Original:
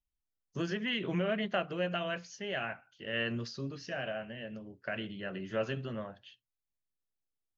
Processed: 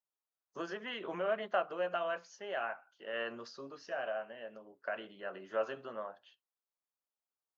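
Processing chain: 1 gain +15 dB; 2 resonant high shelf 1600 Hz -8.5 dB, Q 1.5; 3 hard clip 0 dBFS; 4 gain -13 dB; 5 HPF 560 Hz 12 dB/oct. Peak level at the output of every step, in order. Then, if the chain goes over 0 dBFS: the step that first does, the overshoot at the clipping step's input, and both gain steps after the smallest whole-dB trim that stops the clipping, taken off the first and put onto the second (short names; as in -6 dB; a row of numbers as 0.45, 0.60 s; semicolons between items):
-5.0, -5.5, -5.5, -18.5, -20.5 dBFS; no overload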